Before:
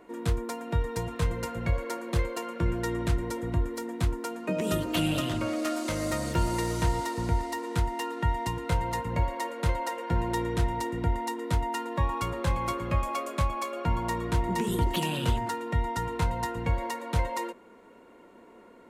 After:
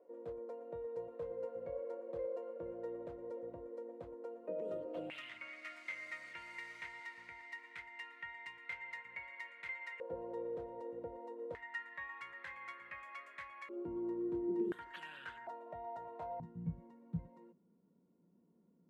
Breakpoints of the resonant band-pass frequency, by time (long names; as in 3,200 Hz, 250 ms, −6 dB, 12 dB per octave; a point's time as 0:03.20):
resonant band-pass, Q 8.2
520 Hz
from 0:05.10 2,100 Hz
from 0:10.00 510 Hz
from 0:11.55 1,900 Hz
from 0:13.69 350 Hz
from 0:14.72 1,600 Hz
from 0:15.47 660 Hz
from 0:16.40 170 Hz